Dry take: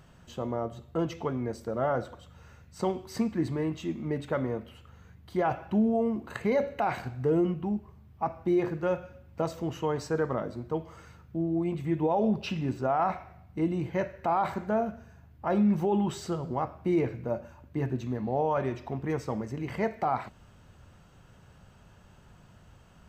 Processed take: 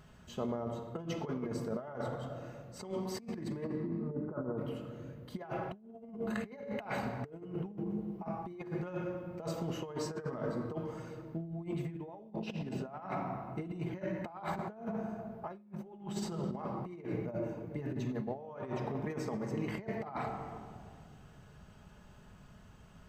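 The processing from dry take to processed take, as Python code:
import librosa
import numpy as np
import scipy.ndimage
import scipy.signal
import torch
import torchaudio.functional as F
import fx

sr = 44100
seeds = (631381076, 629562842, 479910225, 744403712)

y = fx.ellip_lowpass(x, sr, hz=1400.0, order=4, stop_db=40, at=(3.64, 4.58))
y = fx.room_shoebox(y, sr, seeds[0], volume_m3=3700.0, walls='mixed', distance_m=1.4)
y = fx.over_compress(y, sr, threshold_db=-31.0, ratio=-0.5)
y = F.gain(torch.from_numpy(y), -7.0).numpy()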